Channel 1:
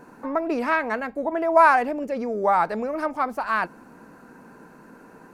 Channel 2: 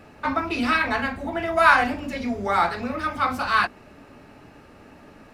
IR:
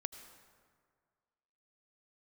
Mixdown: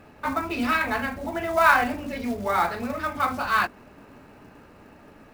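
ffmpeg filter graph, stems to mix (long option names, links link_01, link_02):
-filter_complex "[0:a]dynaudnorm=framelen=210:gausssize=9:maxgain=11.5dB,volume=-17dB[link_01];[1:a]volume=-2dB[link_02];[link_01][link_02]amix=inputs=2:normalize=0,highshelf=frequency=6400:gain=-10,acrusher=bits=5:mode=log:mix=0:aa=0.000001"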